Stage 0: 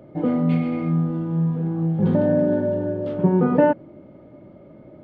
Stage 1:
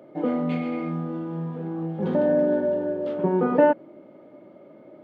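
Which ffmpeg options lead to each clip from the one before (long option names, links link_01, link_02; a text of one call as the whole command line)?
ffmpeg -i in.wav -af "highpass=290" out.wav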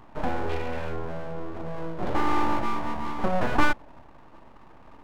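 ffmpeg -i in.wav -af "aeval=exprs='abs(val(0))':channel_layout=same" out.wav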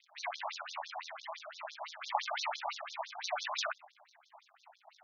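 ffmpeg -i in.wav -af "acrusher=samples=37:mix=1:aa=0.000001:lfo=1:lforange=22.2:lforate=3.6,afftfilt=real='re*between(b*sr/1024,790*pow(4900/790,0.5+0.5*sin(2*PI*5.9*pts/sr))/1.41,790*pow(4900/790,0.5+0.5*sin(2*PI*5.9*pts/sr))*1.41)':imag='im*between(b*sr/1024,790*pow(4900/790,0.5+0.5*sin(2*PI*5.9*pts/sr))/1.41,790*pow(4900/790,0.5+0.5*sin(2*PI*5.9*pts/sr))*1.41)':win_size=1024:overlap=0.75,volume=2dB" out.wav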